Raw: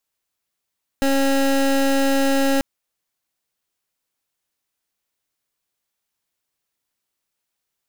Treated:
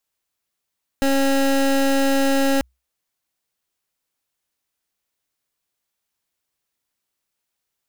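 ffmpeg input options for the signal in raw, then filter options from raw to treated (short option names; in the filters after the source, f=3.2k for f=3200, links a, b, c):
-f lavfi -i "aevalsrc='0.133*(2*lt(mod(273*t,1),0.24)-1)':d=1.59:s=44100"
-af "equalizer=f=63:w=6.7:g=5"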